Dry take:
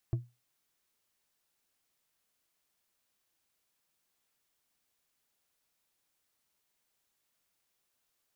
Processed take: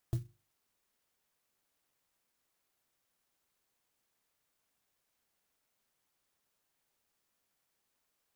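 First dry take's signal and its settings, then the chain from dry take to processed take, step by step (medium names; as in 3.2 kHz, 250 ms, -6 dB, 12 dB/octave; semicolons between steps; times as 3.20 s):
glass hit, lowest mode 121 Hz, decay 0.25 s, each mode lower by 10.5 dB, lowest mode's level -23.5 dB
hum notches 50/100/150/200/250/300/350 Hz; sampling jitter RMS 0.083 ms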